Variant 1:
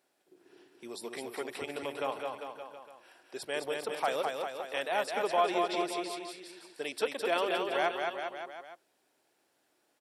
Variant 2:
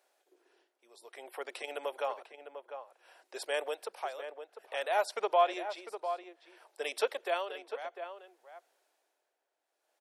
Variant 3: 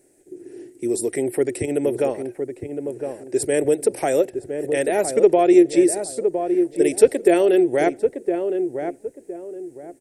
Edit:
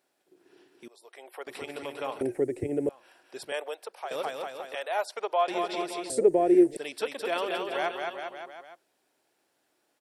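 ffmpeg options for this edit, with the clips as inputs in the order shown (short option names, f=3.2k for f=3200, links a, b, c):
-filter_complex "[1:a]asplit=3[a][b][c];[2:a]asplit=2[d][e];[0:a]asplit=6[f][g][h][i][j][k];[f]atrim=end=0.882[l];[a]atrim=start=0.878:end=1.472[m];[g]atrim=start=1.468:end=2.212[n];[d]atrim=start=2.208:end=2.892[o];[h]atrim=start=2.888:end=3.522[p];[b]atrim=start=3.518:end=4.112[q];[i]atrim=start=4.108:end=4.752[r];[c]atrim=start=4.748:end=5.482[s];[j]atrim=start=5.478:end=6.102[t];[e]atrim=start=6.098:end=6.772[u];[k]atrim=start=6.768[v];[l][m]acrossfade=d=0.004:c1=hsin:c2=hsin[w];[w][n]acrossfade=d=0.004:c1=hsin:c2=hsin[x];[x][o]acrossfade=d=0.004:c1=hsin:c2=hsin[y];[y][p]acrossfade=d=0.004:c1=hsin:c2=hsin[z];[z][q]acrossfade=d=0.004:c1=hsin:c2=hsin[aa];[aa][r]acrossfade=d=0.004:c1=hsin:c2=hsin[ab];[ab][s]acrossfade=d=0.004:c1=hsin:c2=hsin[ac];[ac][t]acrossfade=d=0.004:c1=hsin:c2=hsin[ad];[ad][u]acrossfade=d=0.004:c1=hsin:c2=hsin[ae];[ae][v]acrossfade=d=0.004:c1=hsin:c2=hsin"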